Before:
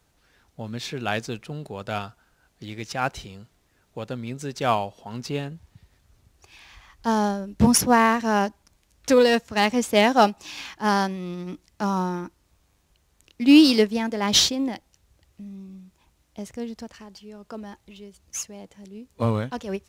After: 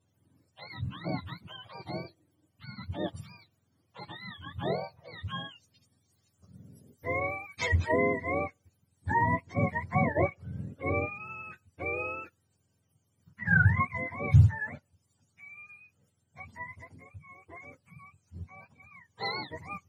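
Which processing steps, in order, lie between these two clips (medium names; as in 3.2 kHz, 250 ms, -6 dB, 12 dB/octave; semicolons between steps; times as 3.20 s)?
spectrum inverted on a logarithmic axis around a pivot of 680 Hz; trim -8 dB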